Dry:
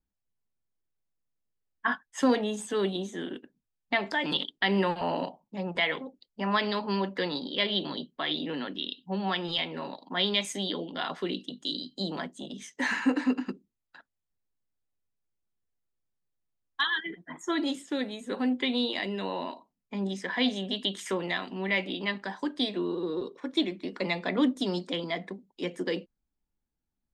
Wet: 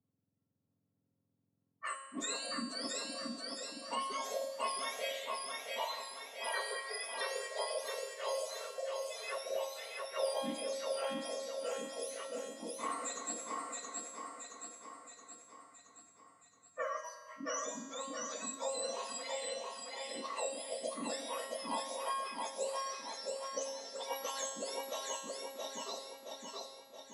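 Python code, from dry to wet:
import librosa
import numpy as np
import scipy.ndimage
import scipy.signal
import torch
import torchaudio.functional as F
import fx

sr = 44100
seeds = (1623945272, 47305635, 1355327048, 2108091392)

y = fx.octave_mirror(x, sr, pivot_hz=1400.0)
y = y + 0.32 * np.pad(y, (int(4.4 * sr / 1000.0), 0))[:len(y)]
y = fx.env_lowpass(y, sr, base_hz=1100.0, full_db=-28.0)
y = fx.comb_fb(y, sr, f0_hz=270.0, decay_s=0.92, harmonics='all', damping=0.0, mix_pct=90)
y = fx.echo_feedback(y, sr, ms=672, feedback_pct=42, wet_db=-3.5)
y = fx.rev_spring(y, sr, rt60_s=1.4, pass_ms=(43,), chirp_ms=80, drr_db=13.0)
y = fx.band_squash(y, sr, depth_pct=40)
y = y * librosa.db_to_amplitude(8.0)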